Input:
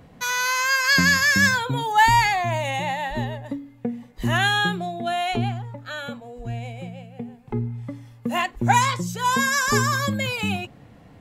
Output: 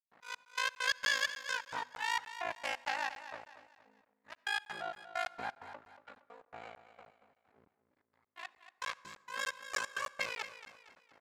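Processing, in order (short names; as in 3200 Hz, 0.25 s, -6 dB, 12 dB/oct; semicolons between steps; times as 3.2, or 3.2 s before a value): Wiener smoothing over 15 samples; gate with hold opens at -43 dBFS; tilt +3.5 dB/oct; auto swell 0.525 s; compressor 4:1, threshold -25 dBFS, peak gain reduction 12.5 dB; half-wave rectifier; step gate ".xx..x.x" 131 bpm -60 dB; band-pass 1700 Hz, Q 0.62; ring modulator 27 Hz; feedback echo 0.232 s, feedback 40%, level -12.5 dB; reverb RT60 1.3 s, pre-delay 53 ms, DRR 21 dB; crackling interface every 0.30 s, samples 512, zero, from 0.45; gain +4 dB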